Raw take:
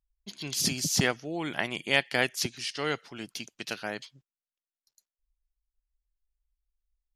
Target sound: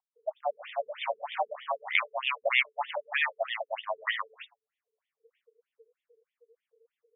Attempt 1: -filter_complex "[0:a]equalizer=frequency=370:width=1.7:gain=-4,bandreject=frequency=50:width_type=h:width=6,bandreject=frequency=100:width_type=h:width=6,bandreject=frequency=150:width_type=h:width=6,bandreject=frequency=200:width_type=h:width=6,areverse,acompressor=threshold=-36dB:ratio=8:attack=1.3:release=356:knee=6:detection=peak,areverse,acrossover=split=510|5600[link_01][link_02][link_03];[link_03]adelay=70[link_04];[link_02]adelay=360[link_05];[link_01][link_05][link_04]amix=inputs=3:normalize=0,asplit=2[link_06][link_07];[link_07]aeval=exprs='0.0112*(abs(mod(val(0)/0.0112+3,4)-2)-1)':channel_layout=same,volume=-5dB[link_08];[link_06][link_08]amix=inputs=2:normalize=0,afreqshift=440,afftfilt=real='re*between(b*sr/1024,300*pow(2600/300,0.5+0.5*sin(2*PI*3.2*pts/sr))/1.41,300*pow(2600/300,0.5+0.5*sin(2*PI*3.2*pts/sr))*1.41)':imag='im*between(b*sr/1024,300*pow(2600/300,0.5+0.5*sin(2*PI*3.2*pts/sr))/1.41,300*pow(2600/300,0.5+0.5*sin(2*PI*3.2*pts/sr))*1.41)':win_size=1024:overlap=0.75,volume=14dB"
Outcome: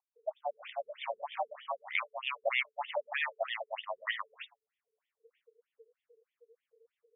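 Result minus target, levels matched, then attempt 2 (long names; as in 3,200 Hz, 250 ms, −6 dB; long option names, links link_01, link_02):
downward compressor: peak gain reduction +8.5 dB
-filter_complex "[0:a]equalizer=frequency=370:width=1.7:gain=-4,bandreject=frequency=50:width_type=h:width=6,bandreject=frequency=100:width_type=h:width=6,bandreject=frequency=150:width_type=h:width=6,bandreject=frequency=200:width_type=h:width=6,areverse,acompressor=threshold=-26.5dB:ratio=8:attack=1.3:release=356:knee=6:detection=peak,areverse,acrossover=split=510|5600[link_01][link_02][link_03];[link_03]adelay=70[link_04];[link_02]adelay=360[link_05];[link_01][link_05][link_04]amix=inputs=3:normalize=0,asplit=2[link_06][link_07];[link_07]aeval=exprs='0.0112*(abs(mod(val(0)/0.0112+3,4)-2)-1)':channel_layout=same,volume=-5dB[link_08];[link_06][link_08]amix=inputs=2:normalize=0,afreqshift=440,afftfilt=real='re*between(b*sr/1024,300*pow(2600/300,0.5+0.5*sin(2*PI*3.2*pts/sr))/1.41,300*pow(2600/300,0.5+0.5*sin(2*PI*3.2*pts/sr))*1.41)':imag='im*between(b*sr/1024,300*pow(2600/300,0.5+0.5*sin(2*PI*3.2*pts/sr))/1.41,300*pow(2600/300,0.5+0.5*sin(2*PI*3.2*pts/sr))*1.41)':win_size=1024:overlap=0.75,volume=14dB"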